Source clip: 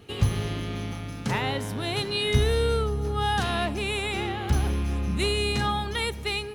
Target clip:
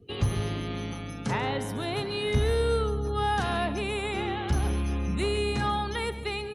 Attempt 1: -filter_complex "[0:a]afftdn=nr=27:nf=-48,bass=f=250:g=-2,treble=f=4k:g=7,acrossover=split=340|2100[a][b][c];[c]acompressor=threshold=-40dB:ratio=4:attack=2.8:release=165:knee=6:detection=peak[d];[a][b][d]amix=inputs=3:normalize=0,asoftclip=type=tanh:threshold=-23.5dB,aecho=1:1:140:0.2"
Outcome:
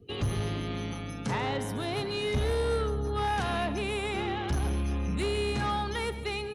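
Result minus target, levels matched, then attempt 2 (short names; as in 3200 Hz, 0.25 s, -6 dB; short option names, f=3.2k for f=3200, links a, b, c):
soft clip: distortion +11 dB
-filter_complex "[0:a]afftdn=nr=27:nf=-48,bass=f=250:g=-2,treble=f=4k:g=7,acrossover=split=340|2100[a][b][c];[c]acompressor=threshold=-40dB:ratio=4:attack=2.8:release=165:knee=6:detection=peak[d];[a][b][d]amix=inputs=3:normalize=0,asoftclip=type=tanh:threshold=-14.5dB,aecho=1:1:140:0.2"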